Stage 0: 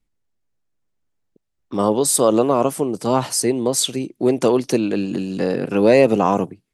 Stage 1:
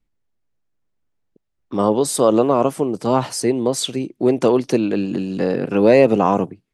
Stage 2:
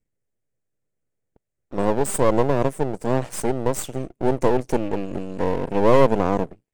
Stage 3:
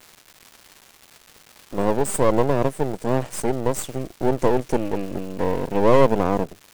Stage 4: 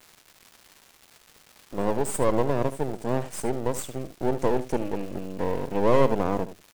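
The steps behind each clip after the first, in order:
LPF 3800 Hz 6 dB/oct; gain +1 dB
graphic EQ 125/500/1000/2000/4000/8000 Hz +8/+11/-5/+6/-9/+11 dB; half-wave rectifier; gain -7.5 dB
crackle 460/s -34 dBFS
echo 74 ms -13.5 dB; gain -5 dB

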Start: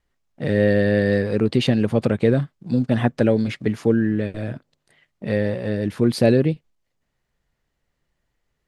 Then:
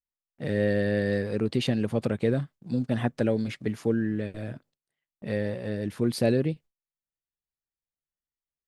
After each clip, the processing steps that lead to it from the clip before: gate with hold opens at -41 dBFS; high shelf 7600 Hz +7.5 dB; gain -7.5 dB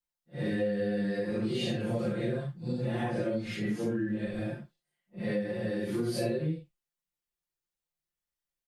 phase scrambler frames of 0.2 s; comb 5.7 ms, depth 88%; compressor 6:1, threshold -28 dBFS, peak gain reduction 12 dB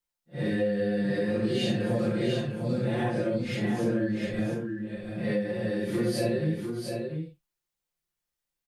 echo 0.699 s -5.5 dB; gain +3 dB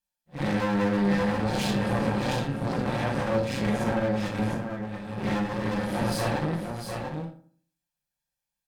minimum comb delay 1.2 ms; added harmonics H 6 -14 dB, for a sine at -17 dBFS; reverb RT60 0.50 s, pre-delay 3 ms, DRR 4 dB

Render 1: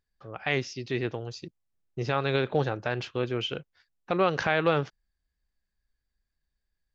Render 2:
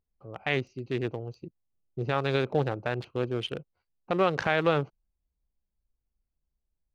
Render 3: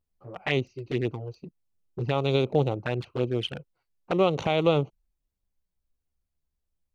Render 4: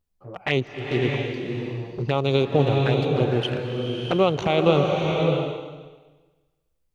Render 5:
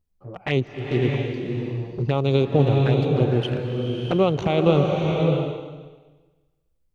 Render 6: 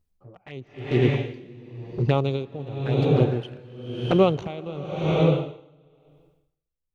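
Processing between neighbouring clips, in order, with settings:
Wiener smoothing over 25 samples
envelope flanger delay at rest 11.9 ms, full sweep at -25 dBFS; gain +4 dB
bloom reverb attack 0.65 s, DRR 1.5 dB; gain +3 dB
low shelf 440 Hz +7.5 dB; gain -3.5 dB
dB-linear tremolo 0.96 Hz, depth 19 dB; gain +2 dB

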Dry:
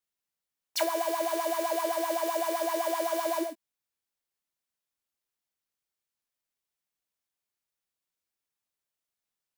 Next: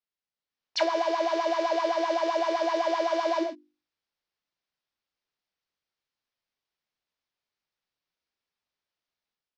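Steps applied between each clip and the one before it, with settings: steep low-pass 5500 Hz 36 dB/oct; notches 50/100/150/200/250/300/350 Hz; AGC gain up to 8 dB; gain -4.5 dB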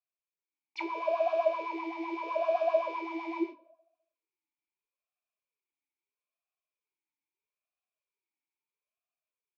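darkening echo 0.205 s, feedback 22%, low-pass 1200 Hz, level -24 dB; reverb RT60 0.20 s, pre-delay 3 ms, DRR 9.5 dB; vowel sweep a-u 0.77 Hz; gain +5.5 dB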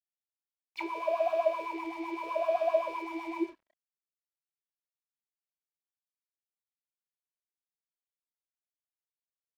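crossover distortion -56 dBFS

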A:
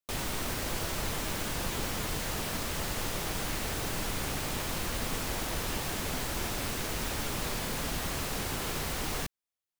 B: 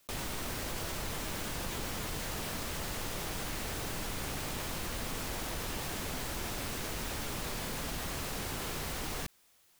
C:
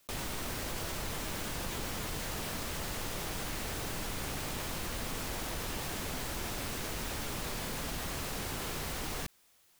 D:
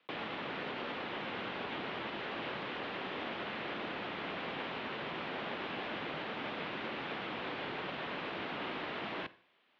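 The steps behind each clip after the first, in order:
fast leveller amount 50%; gain -5.5 dB
nothing audible
Schroeder reverb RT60 0.5 s, combs from 28 ms, DRR 17 dB; mistuned SSB -100 Hz 300–3500 Hz; gain +2 dB

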